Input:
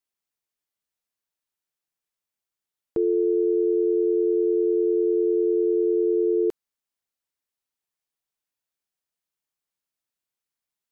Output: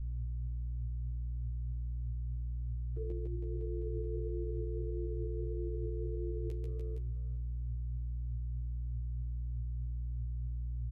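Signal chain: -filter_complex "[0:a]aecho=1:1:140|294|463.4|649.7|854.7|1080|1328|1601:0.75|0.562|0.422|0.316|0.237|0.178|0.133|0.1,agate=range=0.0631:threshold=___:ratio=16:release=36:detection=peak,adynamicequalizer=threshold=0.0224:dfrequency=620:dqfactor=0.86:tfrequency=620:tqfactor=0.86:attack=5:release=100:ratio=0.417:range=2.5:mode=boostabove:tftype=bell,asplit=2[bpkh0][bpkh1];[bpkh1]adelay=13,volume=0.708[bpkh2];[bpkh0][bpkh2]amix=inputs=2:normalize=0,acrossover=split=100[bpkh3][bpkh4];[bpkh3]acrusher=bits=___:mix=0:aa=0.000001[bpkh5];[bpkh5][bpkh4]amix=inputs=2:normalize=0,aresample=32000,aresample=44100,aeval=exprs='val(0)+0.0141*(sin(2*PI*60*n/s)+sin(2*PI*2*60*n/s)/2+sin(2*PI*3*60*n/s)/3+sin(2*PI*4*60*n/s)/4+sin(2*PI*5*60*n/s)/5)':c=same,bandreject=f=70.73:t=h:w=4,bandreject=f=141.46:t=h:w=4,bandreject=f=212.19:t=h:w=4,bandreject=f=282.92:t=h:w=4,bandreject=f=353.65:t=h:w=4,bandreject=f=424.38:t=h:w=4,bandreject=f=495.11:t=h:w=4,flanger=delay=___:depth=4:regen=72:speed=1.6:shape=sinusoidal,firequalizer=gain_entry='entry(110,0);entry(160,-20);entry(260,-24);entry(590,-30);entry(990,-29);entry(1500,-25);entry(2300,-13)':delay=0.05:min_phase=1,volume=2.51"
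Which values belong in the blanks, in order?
0.0355, 3, 5.6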